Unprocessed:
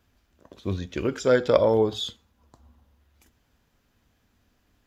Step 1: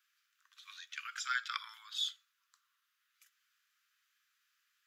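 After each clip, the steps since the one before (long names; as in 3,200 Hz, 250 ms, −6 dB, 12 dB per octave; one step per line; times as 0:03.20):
Butterworth high-pass 1,200 Hz 72 dB per octave
level −4 dB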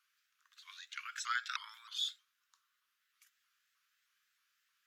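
pitch modulation by a square or saw wave saw up 3.2 Hz, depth 160 cents
level −1 dB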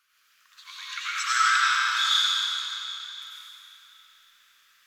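comb and all-pass reverb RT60 3.4 s, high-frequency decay 0.95×, pre-delay 55 ms, DRR −9.5 dB
level +8 dB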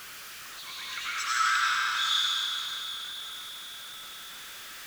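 converter with a step at zero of −33 dBFS
level −5 dB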